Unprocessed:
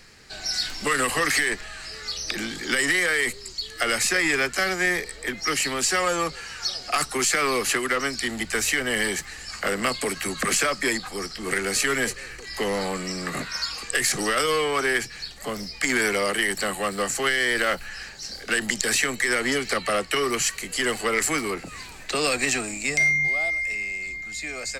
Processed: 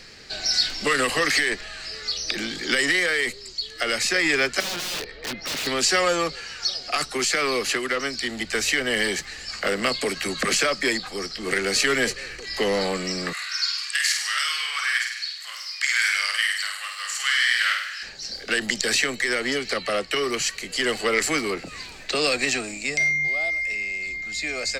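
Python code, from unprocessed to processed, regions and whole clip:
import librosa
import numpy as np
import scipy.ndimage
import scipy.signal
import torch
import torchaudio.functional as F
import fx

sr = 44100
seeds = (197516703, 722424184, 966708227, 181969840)

y = fx.chain(x, sr, fx.bessel_lowpass(hz=3100.0, order=4),
    fx.overflow_wrap(gain_db=25.5), at=(4.6, 5.67))
y = fx.chain(y, sr, fx.highpass(hz=1300.0, slope=24),
    fx.room_flutter(wall_m=8.6, rt60_s=0.76), at=(13.33, 18.03))
y = fx.curve_eq(y, sr, hz=(100.0, 590.0, 920.0, 4600.0, 9800.0), db=(0, 5, 0, 7, -4))
y = fx.rider(y, sr, range_db=10, speed_s=2.0)
y = F.gain(torch.from_numpy(y), -4.0).numpy()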